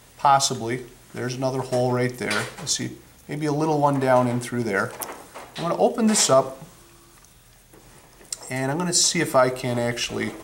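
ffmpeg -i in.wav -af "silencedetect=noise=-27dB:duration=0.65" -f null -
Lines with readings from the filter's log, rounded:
silence_start: 6.50
silence_end: 8.33 | silence_duration: 1.82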